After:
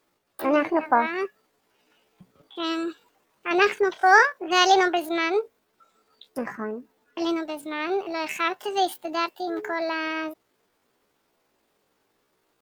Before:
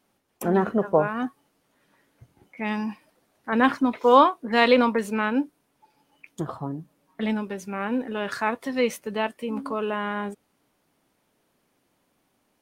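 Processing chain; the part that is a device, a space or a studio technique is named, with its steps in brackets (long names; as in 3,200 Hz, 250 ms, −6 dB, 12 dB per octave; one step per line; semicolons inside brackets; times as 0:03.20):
chipmunk voice (pitch shifter +7.5 semitones)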